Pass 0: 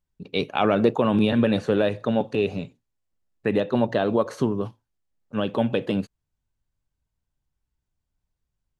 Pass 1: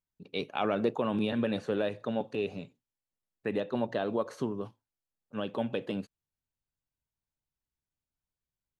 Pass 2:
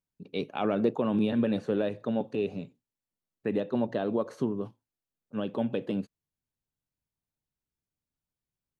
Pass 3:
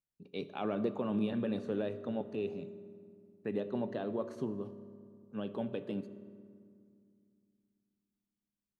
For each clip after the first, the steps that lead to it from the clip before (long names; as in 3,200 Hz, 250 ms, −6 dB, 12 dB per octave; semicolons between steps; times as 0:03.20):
low-shelf EQ 95 Hz −10 dB; level −8.5 dB
parametric band 220 Hz +7.5 dB 2.8 octaves; level −3 dB
convolution reverb RT60 2.3 s, pre-delay 3 ms, DRR 11.5 dB; level −7.5 dB